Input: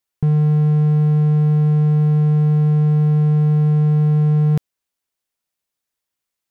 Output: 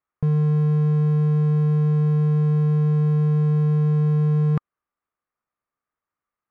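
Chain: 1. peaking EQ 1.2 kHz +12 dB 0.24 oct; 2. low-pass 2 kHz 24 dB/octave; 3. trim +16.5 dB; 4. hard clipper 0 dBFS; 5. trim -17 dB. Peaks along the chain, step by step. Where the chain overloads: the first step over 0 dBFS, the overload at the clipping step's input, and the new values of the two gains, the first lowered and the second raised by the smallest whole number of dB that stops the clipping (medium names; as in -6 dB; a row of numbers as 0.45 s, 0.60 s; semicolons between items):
-9.5 dBFS, -9.5 dBFS, +7.0 dBFS, 0.0 dBFS, -17.0 dBFS; step 3, 7.0 dB; step 3 +9.5 dB, step 5 -10 dB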